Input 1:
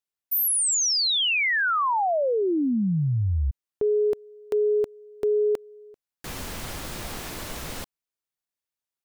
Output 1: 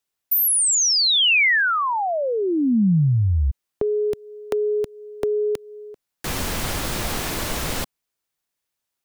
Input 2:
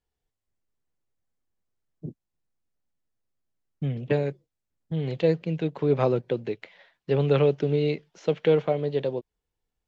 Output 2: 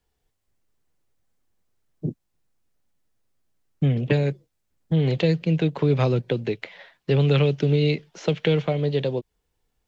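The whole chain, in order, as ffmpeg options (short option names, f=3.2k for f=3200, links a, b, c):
-filter_complex "[0:a]acrossover=split=210|2100[a][b][c];[a]acompressor=threshold=-27dB:ratio=4[d];[b]acompressor=threshold=-33dB:ratio=4[e];[c]acompressor=threshold=-27dB:ratio=4[f];[d][e][f]amix=inputs=3:normalize=0,volume=9dB"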